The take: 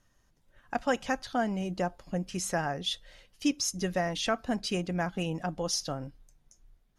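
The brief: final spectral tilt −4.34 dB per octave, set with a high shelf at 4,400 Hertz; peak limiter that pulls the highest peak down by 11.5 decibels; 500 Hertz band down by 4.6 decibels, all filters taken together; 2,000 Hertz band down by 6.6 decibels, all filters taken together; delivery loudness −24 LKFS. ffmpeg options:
ffmpeg -i in.wav -af "equalizer=frequency=500:width_type=o:gain=-5.5,equalizer=frequency=2000:width_type=o:gain=-8,highshelf=frequency=4400:gain=-3.5,volume=16dB,alimiter=limit=-14dB:level=0:latency=1" out.wav

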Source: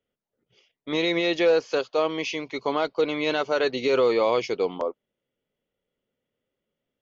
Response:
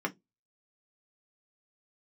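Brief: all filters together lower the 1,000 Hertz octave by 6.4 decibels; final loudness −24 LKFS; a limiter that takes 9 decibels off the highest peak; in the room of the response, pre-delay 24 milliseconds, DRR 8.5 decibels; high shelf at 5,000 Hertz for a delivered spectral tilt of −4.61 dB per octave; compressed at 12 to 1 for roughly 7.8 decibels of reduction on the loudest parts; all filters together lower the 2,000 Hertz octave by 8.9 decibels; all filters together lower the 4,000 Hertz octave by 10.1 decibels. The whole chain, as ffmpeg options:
-filter_complex "[0:a]equalizer=frequency=1000:width_type=o:gain=-6,equalizer=frequency=2000:width_type=o:gain=-6.5,equalizer=frequency=4000:width_type=o:gain=-6.5,highshelf=frequency=5000:gain=-7.5,acompressor=threshold=-26dB:ratio=12,alimiter=level_in=3.5dB:limit=-24dB:level=0:latency=1,volume=-3.5dB,asplit=2[link_01][link_02];[1:a]atrim=start_sample=2205,adelay=24[link_03];[link_02][link_03]afir=irnorm=-1:irlink=0,volume=-15dB[link_04];[link_01][link_04]amix=inputs=2:normalize=0,volume=11.5dB"

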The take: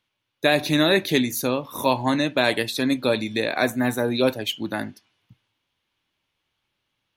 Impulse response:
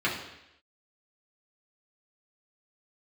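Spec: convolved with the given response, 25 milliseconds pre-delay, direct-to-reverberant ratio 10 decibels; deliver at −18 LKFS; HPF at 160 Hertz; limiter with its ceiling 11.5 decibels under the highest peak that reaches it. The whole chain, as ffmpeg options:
-filter_complex "[0:a]highpass=160,alimiter=limit=-17dB:level=0:latency=1,asplit=2[link_01][link_02];[1:a]atrim=start_sample=2205,adelay=25[link_03];[link_02][link_03]afir=irnorm=-1:irlink=0,volume=-22dB[link_04];[link_01][link_04]amix=inputs=2:normalize=0,volume=9.5dB"

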